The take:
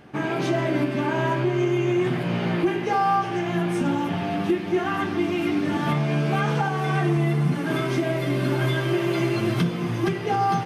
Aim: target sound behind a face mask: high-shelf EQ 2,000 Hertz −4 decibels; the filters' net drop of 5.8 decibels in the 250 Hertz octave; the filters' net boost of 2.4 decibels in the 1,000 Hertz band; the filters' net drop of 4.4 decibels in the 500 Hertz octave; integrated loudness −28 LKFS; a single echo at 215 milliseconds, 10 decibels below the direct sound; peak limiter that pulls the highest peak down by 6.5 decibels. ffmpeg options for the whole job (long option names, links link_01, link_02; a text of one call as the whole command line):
ffmpeg -i in.wav -af "equalizer=frequency=250:width_type=o:gain=-8,equalizer=frequency=500:width_type=o:gain=-4.5,equalizer=frequency=1000:width_type=o:gain=6.5,alimiter=limit=-16.5dB:level=0:latency=1,highshelf=frequency=2000:gain=-4,aecho=1:1:215:0.316,volume=-1.5dB" out.wav